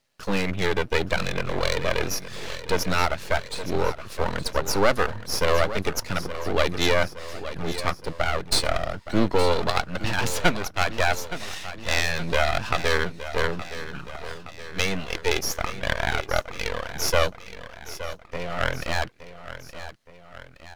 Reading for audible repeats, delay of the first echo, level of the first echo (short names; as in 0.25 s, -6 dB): 3, 0.869 s, -13.0 dB